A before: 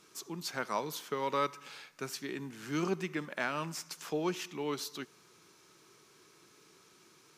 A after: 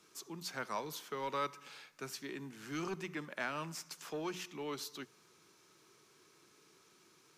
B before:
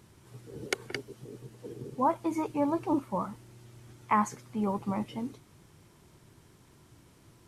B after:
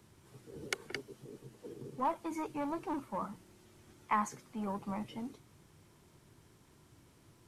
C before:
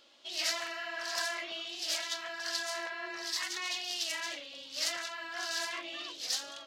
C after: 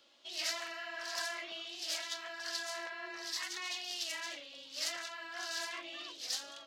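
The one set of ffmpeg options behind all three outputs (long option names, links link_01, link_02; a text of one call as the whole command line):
ffmpeg -i in.wav -filter_complex "[0:a]bandreject=frequency=60:width_type=h:width=6,bandreject=frequency=120:width_type=h:width=6,bandreject=frequency=180:width_type=h:width=6,acrossover=split=120|820|2000[link_01][link_02][link_03][link_04];[link_02]asoftclip=type=tanh:threshold=-32dB[link_05];[link_01][link_05][link_03][link_04]amix=inputs=4:normalize=0,volume=-4dB" out.wav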